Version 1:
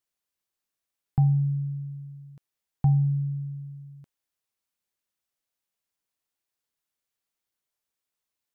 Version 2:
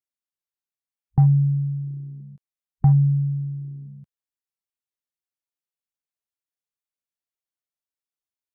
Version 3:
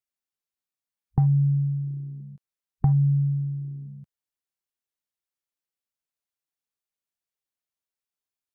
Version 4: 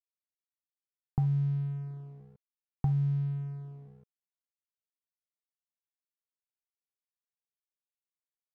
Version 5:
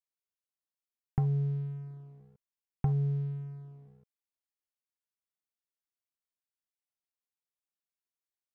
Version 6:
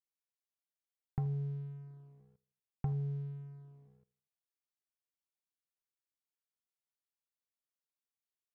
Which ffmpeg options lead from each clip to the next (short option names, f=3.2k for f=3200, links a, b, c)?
-af "afwtdn=0.0158,volume=5.5dB"
-af "acompressor=threshold=-17dB:ratio=6"
-af "aeval=exprs='sgn(val(0))*max(abs(val(0))-0.00631,0)':c=same,volume=-7.5dB"
-af "aeval=exprs='0.158*(cos(1*acos(clip(val(0)/0.158,-1,1)))-cos(1*PI/2))+0.00891*(cos(7*acos(clip(val(0)/0.158,-1,1)))-cos(7*PI/2))':c=same"
-af "aecho=1:1:80|160|240:0.112|0.0426|0.0162,volume=-6.5dB"